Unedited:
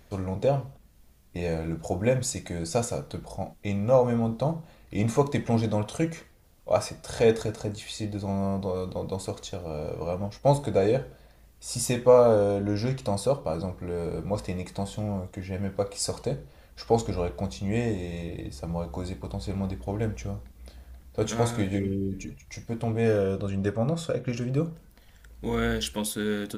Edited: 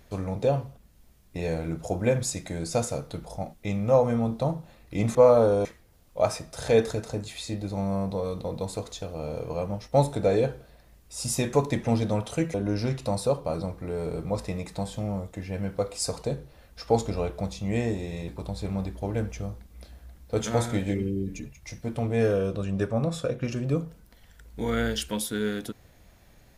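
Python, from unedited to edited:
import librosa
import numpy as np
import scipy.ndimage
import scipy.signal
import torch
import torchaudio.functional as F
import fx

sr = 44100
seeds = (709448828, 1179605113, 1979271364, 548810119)

y = fx.edit(x, sr, fx.swap(start_s=5.15, length_s=1.01, other_s=12.04, other_length_s=0.5),
    fx.cut(start_s=18.28, length_s=0.85), tone=tone)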